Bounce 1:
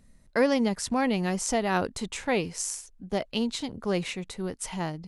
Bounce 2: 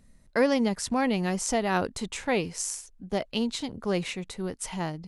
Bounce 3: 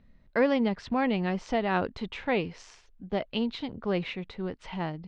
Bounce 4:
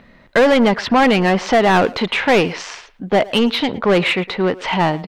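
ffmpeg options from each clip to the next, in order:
ffmpeg -i in.wav -af anull out.wav
ffmpeg -i in.wav -af "lowpass=frequency=3700:width=0.5412,lowpass=frequency=3700:width=1.3066,volume=-1dB" out.wav
ffmpeg -i in.wav -filter_complex "[0:a]asplit=2[link_01][link_02];[link_02]highpass=frequency=720:poles=1,volume=24dB,asoftclip=type=tanh:threshold=-12dB[link_03];[link_01][link_03]amix=inputs=2:normalize=0,lowpass=frequency=2800:poles=1,volume=-6dB,asplit=2[link_04][link_05];[link_05]adelay=110,highpass=300,lowpass=3400,asoftclip=type=hard:threshold=-20.5dB,volume=-17dB[link_06];[link_04][link_06]amix=inputs=2:normalize=0,volume=7.5dB" out.wav

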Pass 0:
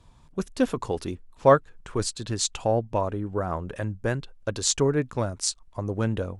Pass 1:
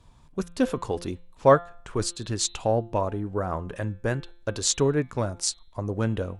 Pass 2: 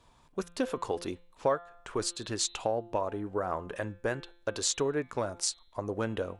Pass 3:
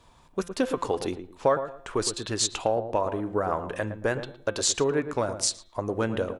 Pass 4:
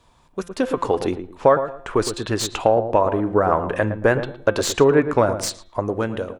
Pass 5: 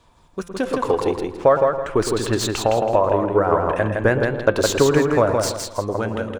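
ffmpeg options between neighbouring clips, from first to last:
ffmpeg -i in.wav -af "bandreject=frequency=172.8:width_type=h:width=4,bandreject=frequency=345.6:width_type=h:width=4,bandreject=frequency=518.4:width_type=h:width=4,bandreject=frequency=691.2:width_type=h:width=4,bandreject=frequency=864:width_type=h:width=4,bandreject=frequency=1036.8:width_type=h:width=4,bandreject=frequency=1209.6:width_type=h:width=4,bandreject=frequency=1382.4:width_type=h:width=4,bandreject=frequency=1555.2:width_type=h:width=4,bandreject=frequency=1728:width_type=h:width=4,bandreject=frequency=1900.8:width_type=h:width=4,bandreject=frequency=2073.6:width_type=h:width=4,bandreject=frequency=2246.4:width_type=h:width=4,bandreject=frequency=2419.2:width_type=h:width=4,bandreject=frequency=2592:width_type=h:width=4,bandreject=frequency=2764.8:width_type=h:width=4,bandreject=frequency=2937.6:width_type=h:width=4,bandreject=frequency=3110.4:width_type=h:width=4,bandreject=frequency=3283.2:width_type=h:width=4,bandreject=frequency=3456:width_type=h:width=4,bandreject=frequency=3628.8:width_type=h:width=4,bandreject=frequency=3801.6:width_type=h:width=4,bandreject=frequency=3974.4:width_type=h:width=4,bandreject=frequency=4147.2:width_type=h:width=4" out.wav
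ffmpeg -i in.wav -af "bass=frequency=250:gain=-11,treble=frequency=4000:gain=-2,acompressor=threshold=-27dB:ratio=3" out.wav
ffmpeg -i in.wav -filter_complex "[0:a]asplit=2[link_01][link_02];[link_02]adelay=113,lowpass=frequency=1100:poles=1,volume=-9dB,asplit=2[link_03][link_04];[link_04]adelay=113,lowpass=frequency=1100:poles=1,volume=0.27,asplit=2[link_05][link_06];[link_06]adelay=113,lowpass=frequency=1100:poles=1,volume=0.27[link_07];[link_01][link_03][link_05][link_07]amix=inputs=4:normalize=0,volume=5dB" out.wav
ffmpeg -i in.wav -filter_complex "[0:a]acrossover=split=2700[link_01][link_02];[link_01]dynaudnorm=framelen=160:gausssize=9:maxgain=11.5dB[link_03];[link_02]aeval=exprs='clip(val(0),-1,0.0501)':channel_layout=same[link_04];[link_03][link_04]amix=inputs=2:normalize=0" out.wav
ffmpeg -i in.wav -filter_complex "[0:a]acrossover=split=5600[link_01][link_02];[link_02]acrusher=bits=2:mode=log:mix=0:aa=0.000001[link_03];[link_01][link_03]amix=inputs=2:normalize=0,aphaser=in_gain=1:out_gain=1:delay=2.2:decay=0.24:speed=0.45:type=sinusoidal,aecho=1:1:163|326|489|652:0.631|0.177|0.0495|0.0139,volume=-1dB" out.wav

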